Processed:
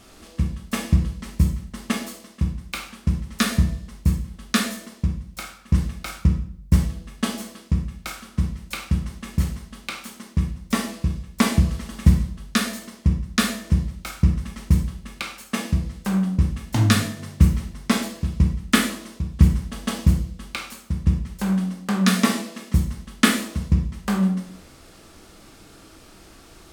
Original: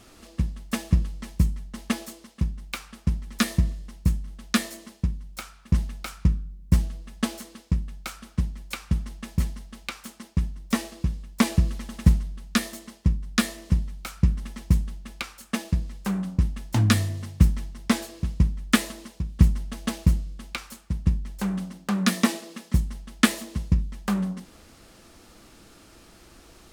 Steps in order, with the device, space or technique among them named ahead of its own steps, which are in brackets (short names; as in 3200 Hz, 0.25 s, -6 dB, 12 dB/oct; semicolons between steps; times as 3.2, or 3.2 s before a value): bathroom (reverb RT60 0.55 s, pre-delay 13 ms, DRR 1.5 dB); gain +1.5 dB